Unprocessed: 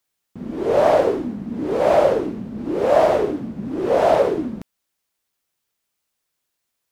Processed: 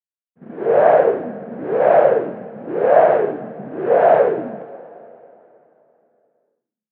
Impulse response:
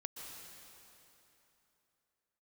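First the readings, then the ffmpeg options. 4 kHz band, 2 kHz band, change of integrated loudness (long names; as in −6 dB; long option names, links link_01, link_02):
below −10 dB, +4.0 dB, +3.5 dB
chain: -filter_complex "[0:a]agate=range=-33dB:threshold=-24dB:ratio=3:detection=peak,highpass=frequency=120:width=0.5412,highpass=frequency=120:width=1.3066,equalizer=frequency=150:width_type=q:width=4:gain=3,equalizer=frequency=290:width_type=q:width=4:gain=-5,equalizer=frequency=470:width_type=q:width=4:gain=7,equalizer=frequency=710:width_type=q:width=4:gain=7,equalizer=frequency=1600:width_type=q:width=4:gain=9,lowpass=frequency=2500:width=0.5412,lowpass=frequency=2500:width=1.3066,asplit=2[link_01][link_02];[1:a]atrim=start_sample=2205[link_03];[link_02][link_03]afir=irnorm=-1:irlink=0,volume=-9.5dB[link_04];[link_01][link_04]amix=inputs=2:normalize=0,volume=-3.5dB"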